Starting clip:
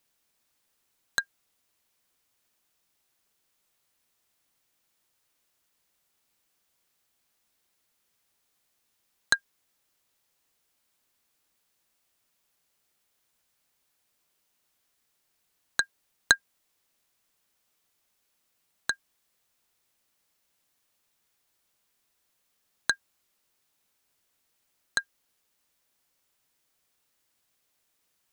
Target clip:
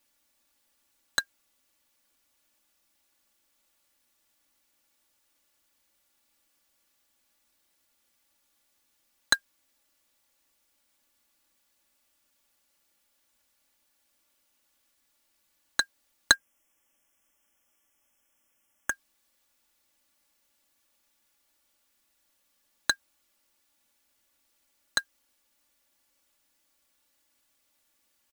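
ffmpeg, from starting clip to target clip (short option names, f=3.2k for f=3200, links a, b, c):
-filter_complex "[0:a]aecho=1:1:3.5:0.83,acrusher=bits=4:mode=log:mix=0:aa=0.000001,asettb=1/sr,asplit=3[a][b][c];[a]atrim=end=16.344[d];[b]atrim=start=16.34:end=18.92,asetpts=PTS-STARTPTS,afade=t=in:d=0.004:c=qsin,afade=t=out:st=2.576:d=0.004:c=qsin,asuperstop=centerf=4200:order=12:qfactor=2.4[e];[c]atrim=start=18.916[f];[d][e]acrossfade=d=0.004:c1=hsin:c2=qsin[g];[g][f]acrossfade=d=0.004:c1=qsin:c2=hsin"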